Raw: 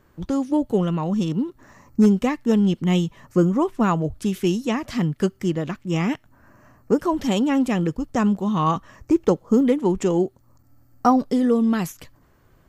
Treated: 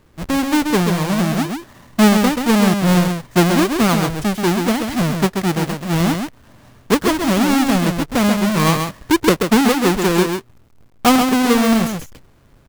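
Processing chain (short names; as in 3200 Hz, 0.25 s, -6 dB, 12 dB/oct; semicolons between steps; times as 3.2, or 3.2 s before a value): half-waves squared off; echo 0.133 s -5.5 dB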